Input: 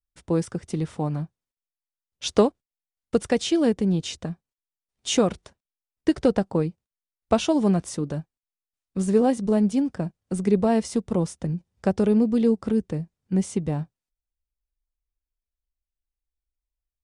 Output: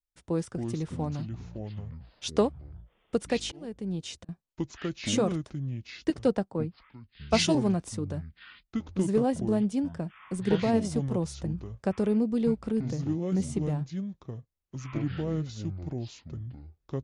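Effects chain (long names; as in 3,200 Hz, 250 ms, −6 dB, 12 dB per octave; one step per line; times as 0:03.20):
delay with pitch and tempo change per echo 151 ms, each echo −6 semitones, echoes 3, each echo −6 dB
0:03.31–0:04.29: volume swells 646 ms
0:06.10–0:07.55: multiband upward and downward expander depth 100%
level −6 dB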